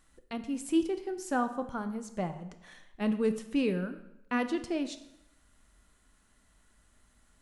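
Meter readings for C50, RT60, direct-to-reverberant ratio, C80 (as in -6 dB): 12.0 dB, 0.85 s, 8.5 dB, 14.5 dB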